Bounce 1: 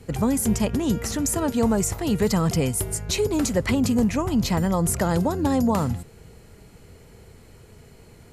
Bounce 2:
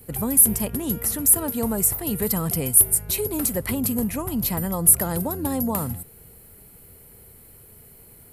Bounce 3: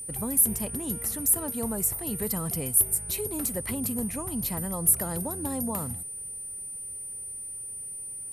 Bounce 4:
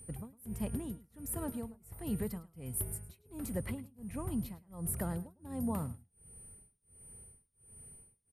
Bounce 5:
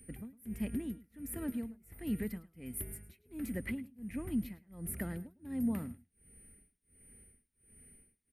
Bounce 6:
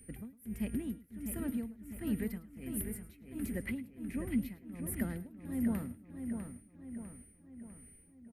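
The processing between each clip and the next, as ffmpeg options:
-af "aexciter=amount=9.6:drive=8.1:freq=9.4k,volume=-4.5dB"
-af "aeval=exprs='val(0)+0.0355*sin(2*PI*9300*n/s)':c=same,volume=-6.5dB"
-af "tremolo=f=1.4:d=0.99,bass=f=250:g=7,treble=f=4k:g=-10,aecho=1:1:106:0.119,volume=-5.5dB"
-af "equalizer=f=125:t=o:w=1:g=-10,equalizer=f=250:t=o:w=1:g=8,equalizer=f=500:t=o:w=1:g=-3,equalizer=f=1k:t=o:w=1:g=-12,equalizer=f=2k:t=o:w=1:g=11,equalizer=f=4k:t=o:w=1:g=-3,equalizer=f=8k:t=o:w=1:g=-6,volume=-1dB"
-filter_complex "[0:a]asplit=2[a][b];[b]adelay=650,lowpass=f=3.6k:p=1,volume=-6.5dB,asplit=2[c][d];[d]adelay=650,lowpass=f=3.6k:p=1,volume=0.52,asplit=2[e][f];[f]adelay=650,lowpass=f=3.6k:p=1,volume=0.52,asplit=2[g][h];[h]adelay=650,lowpass=f=3.6k:p=1,volume=0.52,asplit=2[i][j];[j]adelay=650,lowpass=f=3.6k:p=1,volume=0.52,asplit=2[k][l];[l]adelay=650,lowpass=f=3.6k:p=1,volume=0.52[m];[a][c][e][g][i][k][m]amix=inputs=7:normalize=0"

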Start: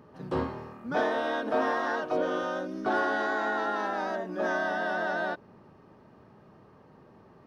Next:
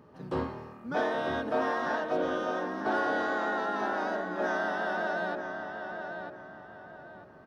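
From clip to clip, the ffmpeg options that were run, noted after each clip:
-filter_complex "[0:a]asplit=2[a][b];[b]adelay=946,lowpass=f=3.6k:p=1,volume=-6.5dB,asplit=2[c][d];[d]adelay=946,lowpass=f=3.6k:p=1,volume=0.34,asplit=2[e][f];[f]adelay=946,lowpass=f=3.6k:p=1,volume=0.34,asplit=2[g][h];[h]adelay=946,lowpass=f=3.6k:p=1,volume=0.34[i];[a][c][e][g][i]amix=inputs=5:normalize=0,volume=-2dB"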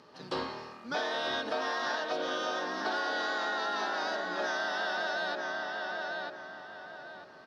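-af "aemphasis=mode=production:type=riaa,acompressor=threshold=-32dB:ratio=6,lowpass=f=4.6k:t=q:w=2.4,volume=2dB"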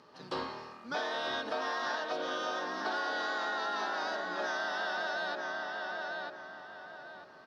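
-af "equalizer=f=1.1k:w=1.5:g=2.5,volume=-3dB"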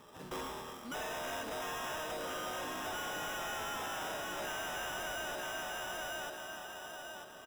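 -af "acrusher=samples=10:mix=1:aa=0.000001,asoftclip=type=tanh:threshold=-39.5dB,aecho=1:1:363:0.224,volume=2dB"

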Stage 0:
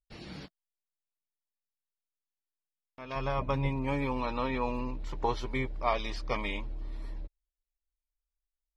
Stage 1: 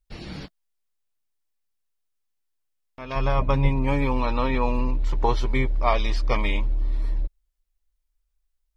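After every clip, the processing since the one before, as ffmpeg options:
-af "lowshelf=f=61:g=11.5,volume=6.5dB"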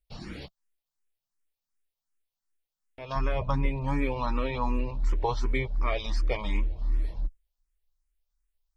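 -filter_complex "[0:a]asplit=2[a][b];[b]alimiter=limit=-17dB:level=0:latency=1:release=475,volume=0dB[c];[a][c]amix=inputs=2:normalize=0,asplit=2[d][e];[e]afreqshift=2.7[f];[d][f]amix=inputs=2:normalize=1,volume=-6.5dB"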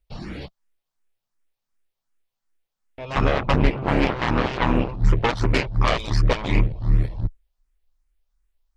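-af "highshelf=f=3.8k:g=-9,aeval=exprs='0.178*(cos(1*acos(clip(val(0)/0.178,-1,1)))-cos(1*PI/2))+0.0562*(cos(7*acos(clip(val(0)/0.178,-1,1)))-cos(7*PI/2))':c=same,volume=6.5dB"

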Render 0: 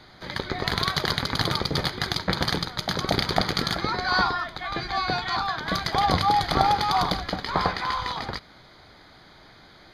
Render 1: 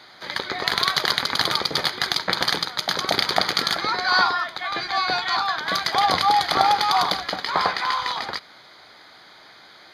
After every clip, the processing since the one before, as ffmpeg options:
-af "highpass=f=770:p=1,volume=5.5dB"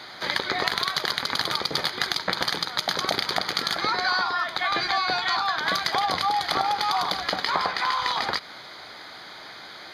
-af "acompressor=threshold=-27dB:ratio=10,volume=6dB"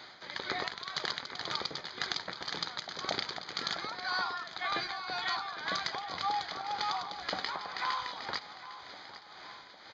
-af "tremolo=f=1.9:d=0.67,aecho=1:1:804|1608|2412|3216|4020|4824:0.188|0.107|0.0612|0.0349|0.0199|0.0113,aresample=16000,aresample=44100,volume=-8dB"

